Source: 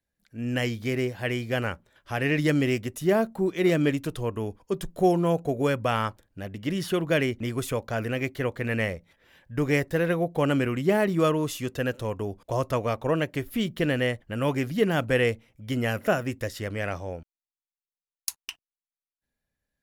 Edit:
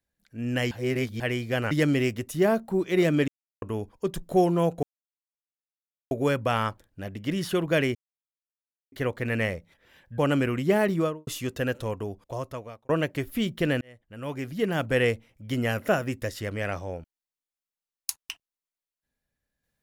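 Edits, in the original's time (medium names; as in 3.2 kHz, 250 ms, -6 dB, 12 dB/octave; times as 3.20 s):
0.71–1.20 s: reverse
1.71–2.38 s: delete
3.95–4.29 s: mute
5.50 s: insert silence 1.28 s
7.34–8.31 s: mute
9.57–10.37 s: delete
11.10–11.46 s: studio fade out
12.02–13.08 s: fade out
14.00–15.23 s: fade in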